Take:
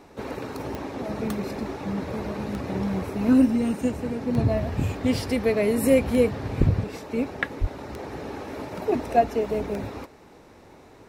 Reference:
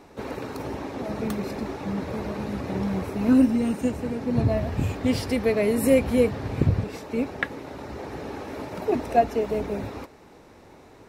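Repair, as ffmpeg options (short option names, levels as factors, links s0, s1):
-filter_complex "[0:a]adeclick=t=4,asplit=3[s0][s1][s2];[s0]afade=t=out:st=6.59:d=0.02[s3];[s1]highpass=f=140:w=0.5412,highpass=f=140:w=1.3066,afade=t=in:st=6.59:d=0.02,afade=t=out:st=6.71:d=0.02[s4];[s2]afade=t=in:st=6.71:d=0.02[s5];[s3][s4][s5]amix=inputs=3:normalize=0,asplit=3[s6][s7][s8];[s6]afade=t=out:st=7.6:d=0.02[s9];[s7]highpass=f=140:w=0.5412,highpass=f=140:w=1.3066,afade=t=in:st=7.6:d=0.02,afade=t=out:st=7.72:d=0.02[s10];[s8]afade=t=in:st=7.72:d=0.02[s11];[s9][s10][s11]amix=inputs=3:normalize=0"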